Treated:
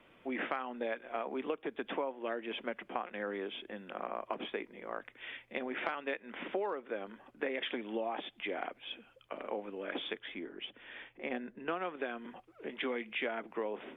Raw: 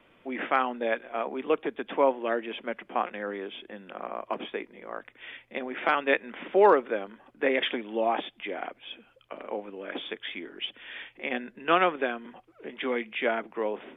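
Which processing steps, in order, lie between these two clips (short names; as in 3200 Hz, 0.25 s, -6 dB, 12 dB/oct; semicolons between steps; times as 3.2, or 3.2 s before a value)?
10.19–11.85 high shelf 2000 Hz -11.5 dB; compressor 20:1, threshold -30 dBFS, peak gain reduction 17 dB; gain -2 dB; Opus 64 kbps 48000 Hz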